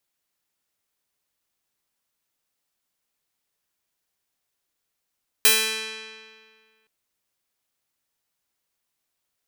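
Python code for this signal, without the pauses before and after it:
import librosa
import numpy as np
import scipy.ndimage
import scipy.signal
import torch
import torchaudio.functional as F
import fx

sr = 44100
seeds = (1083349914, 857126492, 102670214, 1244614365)

y = fx.pluck(sr, length_s=1.42, note=57, decay_s=1.9, pick=0.31, brightness='bright')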